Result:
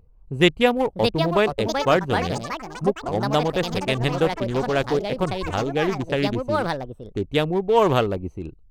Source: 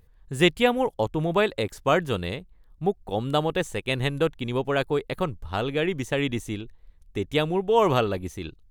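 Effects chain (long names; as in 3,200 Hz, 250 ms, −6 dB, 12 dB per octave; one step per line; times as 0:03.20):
adaptive Wiener filter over 25 samples
delay with pitch and tempo change per echo 726 ms, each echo +5 semitones, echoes 3, each echo −6 dB
level +3 dB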